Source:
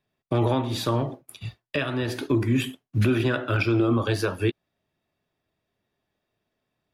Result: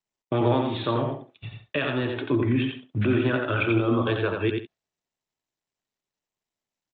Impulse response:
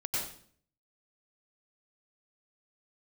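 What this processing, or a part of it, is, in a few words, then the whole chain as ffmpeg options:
Bluetooth headset: -filter_complex "[0:a]agate=range=-16dB:threshold=-42dB:ratio=16:detection=peak,asettb=1/sr,asplit=3[link_01][link_02][link_03];[link_01]atrim=end=2.294[link_04];[link_02]atrim=start=2.29:end=3.42,asetpts=PTS-STARTPTS,afade=type=in:duration=0.004:curve=qsin,afade=type=out:start_time=1.126:duration=0.004:curve=qsin,highshelf=frequency=3800:gain=-7.5[link_05];[link_03]atrim=start=3.416[link_06];[link_04][link_05]acrossfade=duration=0.004:curve1=hsin:curve2=qsin[link_07];[link_07][link_06]acrossfade=duration=0.004:curve1=qsin:curve2=hsin,highpass=frequency=130:poles=1,aecho=1:1:88|155:0.596|0.141,aresample=8000,aresample=44100" -ar 16000 -c:a sbc -b:a 64k

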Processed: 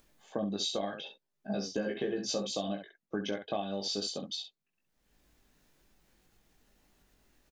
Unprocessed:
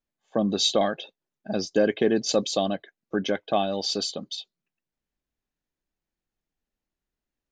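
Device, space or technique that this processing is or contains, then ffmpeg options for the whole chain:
upward and downward compression: -filter_complex "[0:a]asettb=1/sr,asplit=3[link_01][link_02][link_03];[link_01]atrim=end=1.024[link_04];[link_02]atrim=start=1.02:end=2.52,asetpts=PTS-STARTPTS,afade=type=in:duration=0.004:curve=qsin,afade=type=out:start_time=1.496:duration=0.004:curve=qsin,asplit=2[link_05][link_06];[link_06]adelay=15,volume=-2.5dB[link_07];[link_05][link_07]amix=inputs=2:normalize=0,atrim=end_sample=66150[link_08];[link_03]atrim=start=2.516[link_09];[link_04][link_08]acrossfade=duration=0.004:curve1=hsin:curve2=qsin[link_10];[link_10][link_09]acrossfade=duration=0.004:curve1=qsin:curve2=hsin,aecho=1:1:20|66:0.668|0.376,acompressor=mode=upward:threshold=-42dB:ratio=2.5,acompressor=threshold=-25dB:ratio=6,volume=-5.5dB"

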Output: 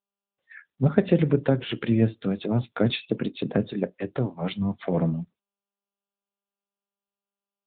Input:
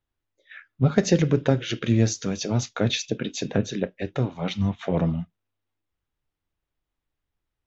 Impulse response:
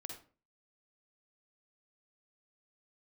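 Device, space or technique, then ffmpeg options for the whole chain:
mobile call with aggressive noise cancelling: -filter_complex "[0:a]asettb=1/sr,asplit=3[link_01][link_02][link_03];[link_01]atrim=end=2.014[link_04];[link_02]atrim=start=2.01:end=3.58,asetpts=PTS-STARTPTS,afade=type=in:duration=0.004:curve=qsin,afade=type=out:start_time=1.566:duration=0.004:curve=qsin,lowshelf=frequency=490:gain=2.5[link_05];[link_03]atrim=start=3.576[link_06];[link_04][link_05]acrossfade=duration=0.004:curve1=hsin:curve2=qsin[link_07];[link_07][link_06]acrossfade=duration=0.004:curve1=qsin:curve2=hsin,highpass=120,afftdn=noise_reduction=20:noise_floor=-43" -ar 8000 -c:a libopencore_amrnb -b:a 10200

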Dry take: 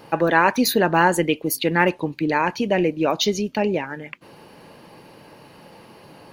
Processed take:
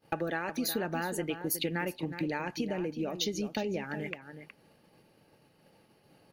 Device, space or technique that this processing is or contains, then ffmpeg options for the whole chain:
ASMR close-microphone chain: -filter_complex "[0:a]agate=range=-33dB:threshold=-33dB:ratio=3:detection=peak,lowshelf=frequency=210:gain=4.5,acompressor=threshold=-31dB:ratio=6,highshelf=frequency=6100:gain=5.5,bandreject=frequency=1000:width=5.1,asettb=1/sr,asplit=3[link_01][link_02][link_03];[link_01]atrim=end=2.694[link_04];[link_02]atrim=start=2.69:end=3.21,asetpts=PTS-STARTPTS,afade=type=in:duration=0.004:curve=qsin,afade=type=out:start_time=0.516:duration=0.004:curve=qsin,equalizer=frequency=1800:width_type=o:width=2.6:gain=-5.5[link_05];[link_03]atrim=start=3.206[link_06];[link_04][link_05]acrossfade=duration=0.004:curve1=hsin:curve2=qsin[link_07];[link_07][link_06]acrossfade=duration=0.004:curve1=qsin:curve2=hsin,asplit=2[link_08][link_09];[link_09]adelay=367.3,volume=-10dB,highshelf=frequency=4000:gain=-8.27[link_10];[link_08][link_10]amix=inputs=2:normalize=0"

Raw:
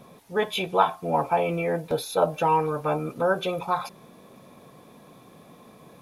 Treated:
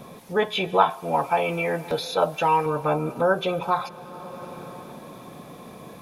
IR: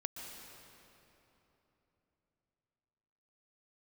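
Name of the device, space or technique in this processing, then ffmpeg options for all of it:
ducked reverb: -filter_complex "[0:a]acrossover=split=5800[link_01][link_02];[link_02]acompressor=threshold=-55dB:ratio=4:attack=1:release=60[link_03];[link_01][link_03]amix=inputs=2:normalize=0,asettb=1/sr,asplit=3[link_04][link_05][link_06];[link_04]atrim=end=0.904[link_07];[link_05]atrim=start=0.9:end=2.66,asetpts=PTS-STARTPTS,afade=type=in:duration=0.004:curve=qsin,afade=type=out:start_time=1.756:duration=0.004:curve=qsin,tiltshelf=frequency=1100:gain=-4.5[link_08];[link_06]atrim=start=2.656[link_09];[link_07][link_08]acrossfade=duration=0.004:curve1=hsin:curve2=qsin[link_10];[link_10][link_09]acrossfade=duration=0.004:curve1=qsin:curve2=hsin,asplit=3[link_11][link_12][link_13];[1:a]atrim=start_sample=2205[link_14];[link_12][link_14]afir=irnorm=-1:irlink=0[link_15];[link_13]apad=whole_len=265457[link_16];[link_15][link_16]sidechaincompress=threshold=-38dB:ratio=8:attack=7.4:release=564,volume=1.5dB[link_17];[link_11][link_17]amix=inputs=2:normalize=0,volume=1.5dB"

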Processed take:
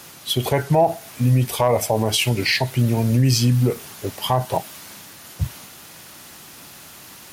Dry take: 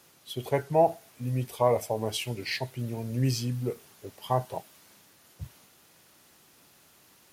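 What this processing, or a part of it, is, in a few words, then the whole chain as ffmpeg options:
mastering chain: -af "equalizer=frequency=440:width_type=o:width=0.92:gain=-4,acompressor=threshold=-34dB:ratio=1.5,asoftclip=type=hard:threshold=-20dB,alimiter=level_in=25dB:limit=-1dB:release=50:level=0:latency=1,volume=-7.5dB"

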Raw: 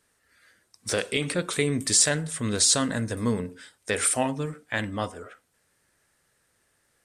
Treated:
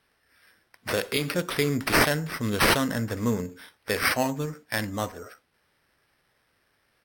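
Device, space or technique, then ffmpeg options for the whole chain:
crushed at another speed: -af "asetrate=55125,aresample=44100,acrusher=samples=5:mix=1:aa=0.000001,asetrate=35280,aresample=44100"

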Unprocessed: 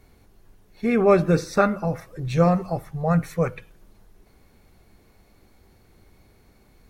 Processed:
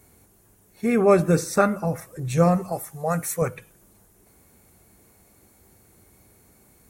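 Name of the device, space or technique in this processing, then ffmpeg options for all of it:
budget condenser microphone: -filter_complex "[0:a]highpass=67,highshelf=frequency=6000:width_type=q:width=1.5:gain=10.5,asettb=1/sr,asplit=3[link_01][link_02][link_03];[link_01]atrim=end=2.724[link_04];[link_02]atrim=start=2.72:end=3.42,asetpts=PTS-STARTPTS,afade=type=in:duration=0.004:curve=qsin,afade=type=out:start_time=0.696:duration=0.004:curve=qsin,bass=frequency=250:gain=-9,treble=frequency=4000:gain=6[link_05];[link_03]atrim=start=3.416[link_06];[link_04][link_05]acrossfade=duration=0.004:curve1=hsin:curve2=qsin[link_07];[link_07][link_06]acrossfade=duration=0.004:curve1=qsin:curve2=hsin"

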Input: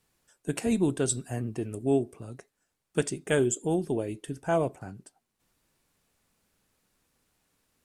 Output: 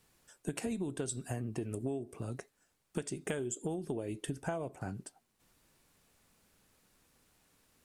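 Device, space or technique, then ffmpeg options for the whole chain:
serial compression, leveller first: -af "acompressor=threshold=-27dB:ratio=2.5,acompressor=threshold=-37dB:ratio=8,volume=3.5dB"

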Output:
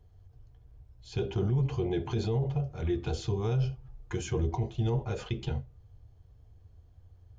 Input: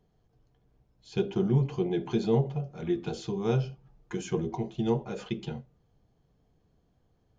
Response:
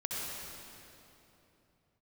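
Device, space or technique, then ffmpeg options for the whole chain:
car stereo with a boomy subwoofer: -af "lowshelf=frequency=130:width_type=q:width=3:gain=11,alimiter=limit=-23dB:level=0:latency=1:release=13,volume=1.5dB"

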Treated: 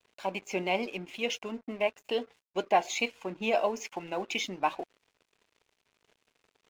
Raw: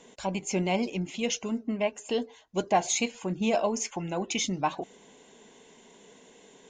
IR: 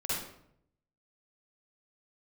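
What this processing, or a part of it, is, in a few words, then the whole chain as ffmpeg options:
pocket radio on a weak battery: -af "highpass=330,lowpass=4000,aeval=exprs='sgn(val(0))*max(abs(val(0))-0.00251,0)':channel_layout=same,equalizer=frequency=2500:width_type=o:width=0.34:gain=4.5"

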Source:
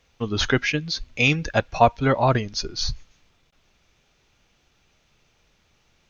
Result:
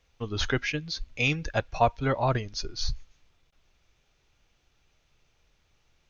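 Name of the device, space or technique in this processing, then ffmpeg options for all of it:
low shelf boost with a cut just above: -af "lowshelf=frequency=67:gain=7.5,equalizer=frequency=210:width_type=o:width=0.55:gain=-4.5,volume=-6.5dB"

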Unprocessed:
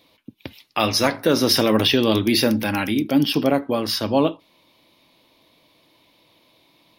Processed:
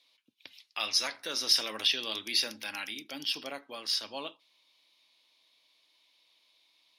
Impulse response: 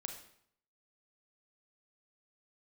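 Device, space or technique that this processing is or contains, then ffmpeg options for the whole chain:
piezo pickup straight into a mixer: -af "lowpass=5700,aderivative"

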